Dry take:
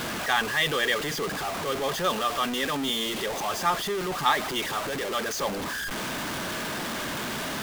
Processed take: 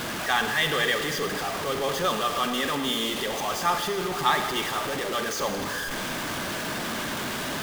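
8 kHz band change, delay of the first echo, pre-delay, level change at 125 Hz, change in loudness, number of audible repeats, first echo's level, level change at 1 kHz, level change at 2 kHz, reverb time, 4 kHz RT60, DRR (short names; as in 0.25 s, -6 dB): +1.0 dB, none, 31 ms, +1.0 dB, +1.0 dB, none, none, +1.0 dB, +1.0 dB, 2.2 s, 2.1 s, 6.0 dB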